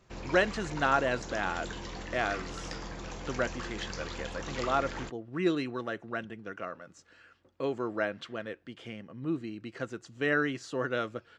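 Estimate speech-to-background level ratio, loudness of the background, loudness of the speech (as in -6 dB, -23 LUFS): 7.0 dB, -40.5 LUFS, -33.5 LUFS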